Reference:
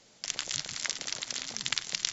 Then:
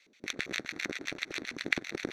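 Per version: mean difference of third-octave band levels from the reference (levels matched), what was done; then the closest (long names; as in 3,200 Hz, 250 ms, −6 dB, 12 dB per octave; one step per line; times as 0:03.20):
9.0 dB: lower of the sound and its delayed copy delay 0.51 ms
dynamic equaliser 1,200 Hz, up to +7 dB, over −50 dBFS, Q 0.77
auto-filter band-pass square 7.6 Hz 310–2,500 Hz
level +6.5 dB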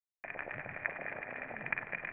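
14.0 dB: bit-depth reduction 8 bits, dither none
Chebyshev low-pass with heavy ripple 2,500 Hz, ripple 9 dB
delay that swaps between a low-pass and a high-pass 103 ms, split 1,300 Hz, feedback 58%, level −4.5 dB
level +6.5 dB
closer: first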